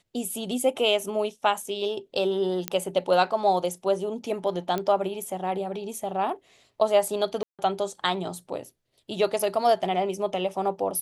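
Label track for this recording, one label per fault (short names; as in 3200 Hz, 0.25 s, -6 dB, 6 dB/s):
2.680000	2.680000	pop -9 dBFS
4.780000	4.780000	pop -15 dBFS
7.430000	7.590000	gap 0.157 s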